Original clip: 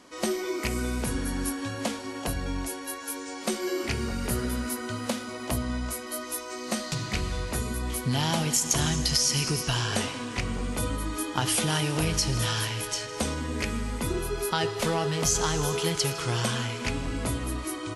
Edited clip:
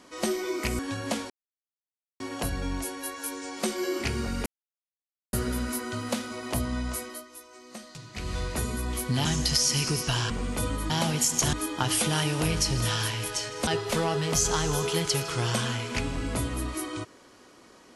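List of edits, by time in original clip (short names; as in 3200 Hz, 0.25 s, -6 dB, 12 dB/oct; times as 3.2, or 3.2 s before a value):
0.79–1.53 cut
2.04 insert silence 0.90 s
4.3 insert silence 0.87 s
5.99–7.33 dip -13 dB, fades 0.23 s
8.22–8.85 move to 11.1
9.9–10.5 cut
13.24–14.57 cut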